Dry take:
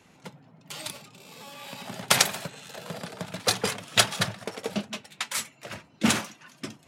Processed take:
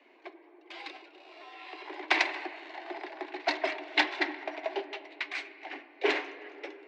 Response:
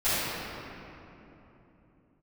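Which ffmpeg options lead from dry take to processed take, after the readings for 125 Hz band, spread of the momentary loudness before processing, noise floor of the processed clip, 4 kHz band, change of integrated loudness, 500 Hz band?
under -40 dB, 20 LU, -58 dBFS, -8.5 dB, -5.5 dB, -1.0 dB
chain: -filter_complex "[0:a]afreqshift=190,highpass=210,equalizer=f=250:t=q:w=4:g=6,equalizer=f=480:t=q:w=4:g=-7,equalizer=f=680:t=q:w=4:g=4,equalizer=f=1.3k:t=q:w=4:g=-8,equalizer=f=2.1k:t=q:w=4:g=7,equalizer=f=3.3k:t=q:w=4:g=-5,lowpass=f=3.7k:w=0.5412,lowpass=f=3.7k:w=1.3066,asplit=2[a][b];[1:a]atrim=start_sample=2205,lowpass=3.6k[c];[b][c]afir=irnorm=-1:irlink=0,volume=-27dB[d];[a][d]amix=inputs=2:normalize=0,volume=-3dB"

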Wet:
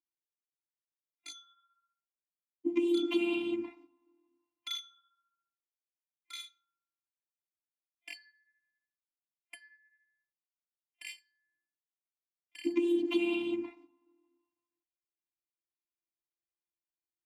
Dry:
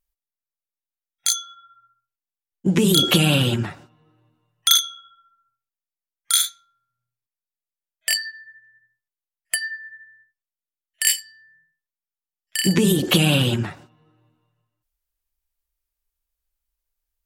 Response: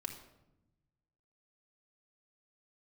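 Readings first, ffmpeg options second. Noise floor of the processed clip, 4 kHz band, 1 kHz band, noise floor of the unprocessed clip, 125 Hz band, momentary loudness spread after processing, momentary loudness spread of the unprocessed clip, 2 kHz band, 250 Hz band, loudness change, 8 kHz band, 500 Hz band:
under -85 dBFS, -22.5 dB, -18.5 dB, under -85 dBFS, under -40 dB, 19 LU, 13 LU, -17.0 dB, -10.0 dB, -13.0 dB, -32.5 dB, -8.5 dB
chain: -filter_complex "[0:a]afftfilt=real='hypot(re,im)*cos(PI*b)':imag='0':win_size=512:overlap=0.75,asplit=3[a][b][c];[a]bandpass=f=300:t=q:w=8,volume=0dB[d];[b]bandpass=f=870:t=q:w=8,volume=-6dB[e];[c]bandpass=f=2.24k:t=q:w=8,volume=-9dB[f];[d][e][f]amix=inputs=3:normalize=0,volume=3.5dB"

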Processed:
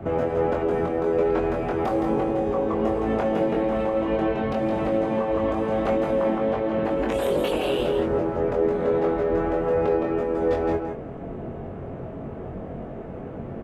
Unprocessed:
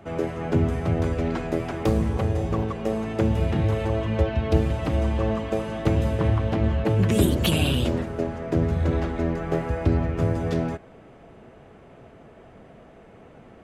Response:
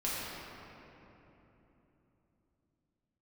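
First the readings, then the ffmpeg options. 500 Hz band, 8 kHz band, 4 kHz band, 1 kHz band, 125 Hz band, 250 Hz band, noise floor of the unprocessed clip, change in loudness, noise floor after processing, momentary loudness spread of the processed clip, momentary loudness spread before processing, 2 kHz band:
+5.5 dB, n/a, -5.5 dB, +5.5 dB, -10.5 dB, 0.0 dB, -49 dBFS, +0.5 dB, -35 dBFS, 13 LU, 6 LU, 0.0 dB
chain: -filter_complex "[0:a]afftfilt=real='re*lt(hypot(re,im),0.316)':imag='im*lt(hypot(re,im),0.316)':win_size=1024:overlap=0.75,tiltshelf=f=1.2k:g=6.5,acrossover=split=300|1000[a][b][c];[a]acompressor=threshold=-36dB:ratio=6[d];[d][b][c]amix=inputs=3:normalize=0,alimiter=limit=-23dB:level=0:latency=1:release=196,asplit=2[e][f];[f]adynamicsmooth=sensitivity=3.5:basefreq=3.5k,volume=0dB[g];[e][g]amix=inputs=2:normalize=0,asplit=2[h][i];[i]adelay=22,volume=-3dB[j];[h][j]amix=inputs=2:normalize=0,aecho=1:1:165:0.501"

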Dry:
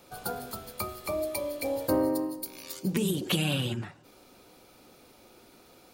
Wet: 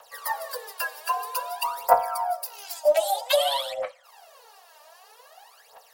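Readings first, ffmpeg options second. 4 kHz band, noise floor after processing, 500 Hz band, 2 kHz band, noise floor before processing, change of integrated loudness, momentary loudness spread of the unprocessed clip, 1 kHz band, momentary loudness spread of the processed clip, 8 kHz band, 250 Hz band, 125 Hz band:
+5.0 dB, -55 dBFS, +6.5 dB, +5.5 dB, -57 dBFS, +5.0 dB, 11 LU, +15.0 dB, 11 LU, +3.5 dB, under -25 dB, under -30 dB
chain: -af "afreqshift=410,aphaser=in_gain=1:out_gain=1:delay=3.4:decay=0.77:speed=0.52:type=triangular"

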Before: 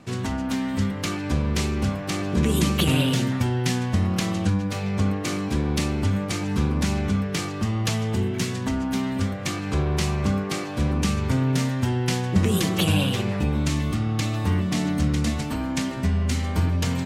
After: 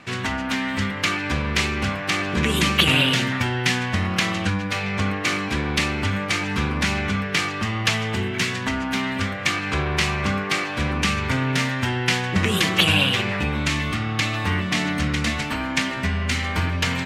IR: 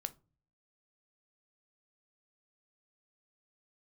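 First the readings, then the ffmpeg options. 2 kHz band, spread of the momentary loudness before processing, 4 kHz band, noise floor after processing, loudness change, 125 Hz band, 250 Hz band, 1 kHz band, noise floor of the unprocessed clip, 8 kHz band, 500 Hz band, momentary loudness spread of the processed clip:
+11.0 dB, 5 LU, +8.0 dB, -28 dBFS, +2.5 dB, -2.0 dB, -1.5 dB, +6.0 dB, -30 dBFS, +1.5 dB, +0.5 dB, 7 LU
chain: -af "equalizer=f=2.1k:w=0.52:g=14.5,volume=-2.5dB"

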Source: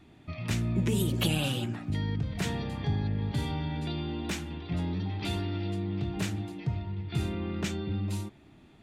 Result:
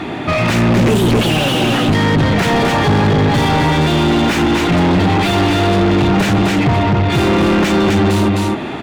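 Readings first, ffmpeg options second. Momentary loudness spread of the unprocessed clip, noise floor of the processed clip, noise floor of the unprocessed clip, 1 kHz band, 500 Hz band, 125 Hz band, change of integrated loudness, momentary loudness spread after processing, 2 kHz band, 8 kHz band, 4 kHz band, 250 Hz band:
7 LU, -23 dBFS, -56 dBFS, +26.5 dB, +23.0 dB, +15.5 dB, +18.5 dB, 1 LU, +22.5 dB, +14.5 dB, +18.5 dB, +20.0 dB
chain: -filter_complex "[0:a]aecho=1:1:258:0.447,asplit=2[a][b];[b]highpass=f=720:p=1,volume=40dB,asoftclip=type=tanh:threshold=-12.5dB[c];[a][c]amix=inputs=2:normalize=0,lowpass=f=1.2k:p=1,volume=-6dB,volume=8.5dB"

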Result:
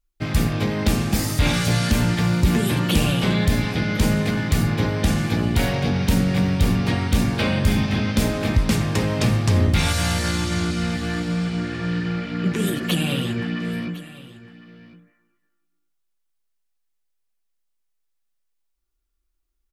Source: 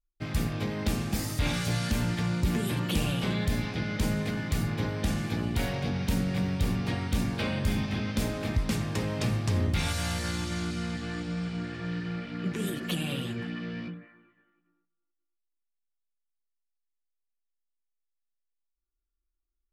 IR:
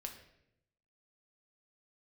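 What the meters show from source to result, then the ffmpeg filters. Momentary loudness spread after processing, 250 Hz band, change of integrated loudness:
6 LU, +9.0 dB, +9.0 dB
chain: -af "aecho=1:1:1056:0.119,volume=9dB"

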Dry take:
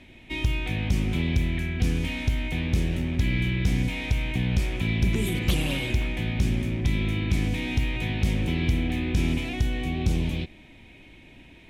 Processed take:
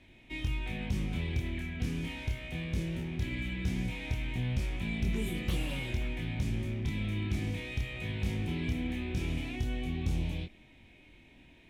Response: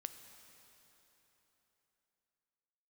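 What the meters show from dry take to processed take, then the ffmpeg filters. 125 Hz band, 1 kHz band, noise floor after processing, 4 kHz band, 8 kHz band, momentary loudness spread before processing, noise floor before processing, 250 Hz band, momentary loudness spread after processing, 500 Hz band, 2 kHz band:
-8.5 dB, -8.5 dB, -58 dBFS, -9.0 dB, -9.5 dB, 3 LU, -50 dBFS, -8.0 dB, 3 LU, -8.0 dB, -8.5 dB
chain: -filter_complex "[0:a]flanger=delay=22.5:depth=8:speed=0.19,acrossover=split=2200[a][b];[b]asoftclip=type=tanh:threshold=-35.5dB[c];[a][c]amix=inputs=2:normalize=0,volume=-5dB"

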